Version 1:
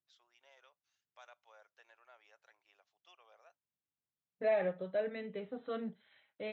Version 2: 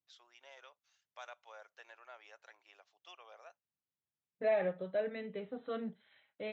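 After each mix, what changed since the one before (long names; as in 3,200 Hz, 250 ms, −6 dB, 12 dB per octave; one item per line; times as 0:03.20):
first voice +8.0 dB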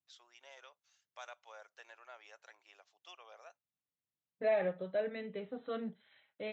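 master: remove Bessel low-pass filter 5,300 Hz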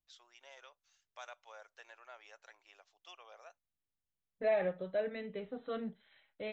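master: remove high-pass filter 100 Hz 24 dB per octave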